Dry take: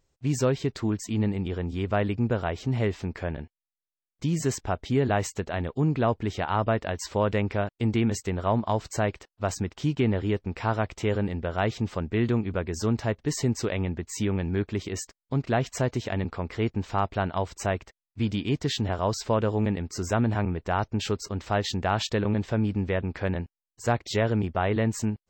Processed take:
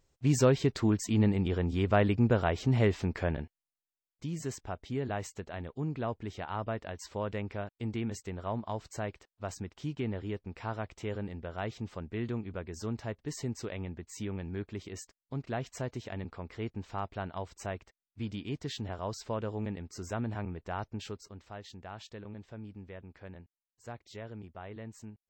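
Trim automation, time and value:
3.33 s 0 dB
4.26 s -10.5 dB
20.91 s -10.5 dB
21.54 s -19.5 dB

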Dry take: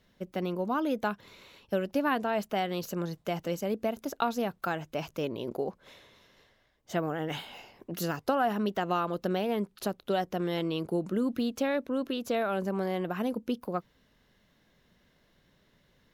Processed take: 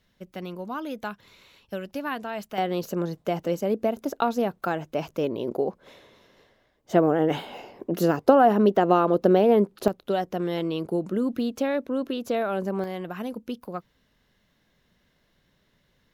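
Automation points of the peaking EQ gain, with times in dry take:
peaking EQ 410 Hz 2.8 oct
-4.5 dB
from 2.58 s +7 dB
from 6.93 s +13.5 dB
from 9.88 s +4 dB
from 12.84 s -2 dB

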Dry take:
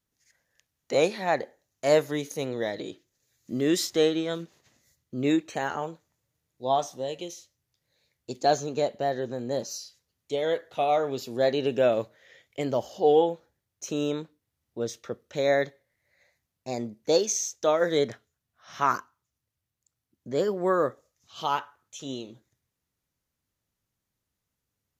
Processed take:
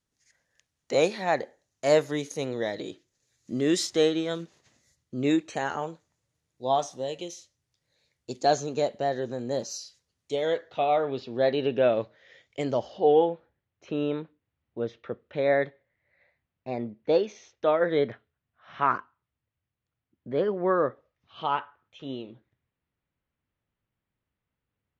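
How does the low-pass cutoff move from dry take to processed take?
low-pass 24 dB/octave
10.40 s 10 kHz
10.87 s 4 kHz
11.93 s 4 kHz
12.62 s 8 kHz
13.10 s 3.1 kHz

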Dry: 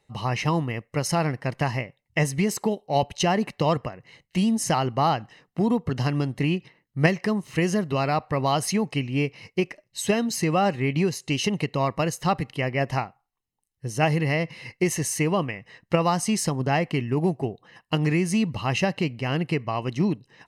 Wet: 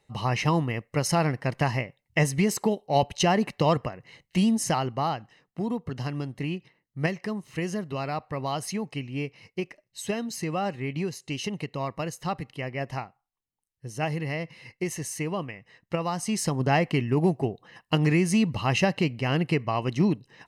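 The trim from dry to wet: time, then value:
4.46 s 0 dB
5.20 s -7 dB
16.10 s -7 dB
16.63 s +0.5 dB

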